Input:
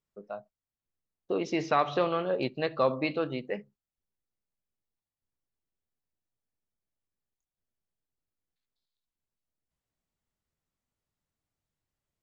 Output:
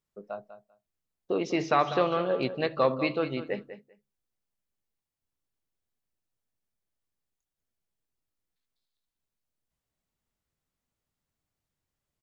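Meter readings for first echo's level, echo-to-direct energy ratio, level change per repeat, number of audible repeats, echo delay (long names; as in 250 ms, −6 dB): −12.0 dB, −12.0 dB, −16.5 dB, 2, 196 ms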